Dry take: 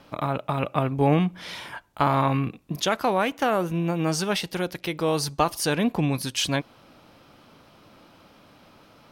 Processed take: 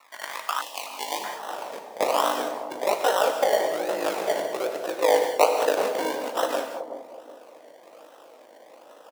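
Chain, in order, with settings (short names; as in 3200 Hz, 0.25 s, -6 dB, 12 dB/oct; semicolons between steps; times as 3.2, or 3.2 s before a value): HPF 220 Hz 24 dB/oct; comb 6.4 ms, depth 45%; in parallel at +2 dB: compressor, threshold -29 dBFS, peak gain reduction 14.5 dB; on the sum: ring modulator 26 Hz; flange 0.27 Hz, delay 3.9 ms, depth 7.9 ms, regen +67%; decimation with a swept rate 27×, swing 60% 1.2 Hz; non-linear reverb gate 0.23 s flat, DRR 4.5 dB; high-pass sweep 1200 Hz -> 540 Hz, 0.91–1.81; 0.61–1.24 Butterworth band-stop 1400 Hz, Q 0.95; on a send: analogue delay 0.374 s, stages 2048, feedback 34%, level -8.5 dB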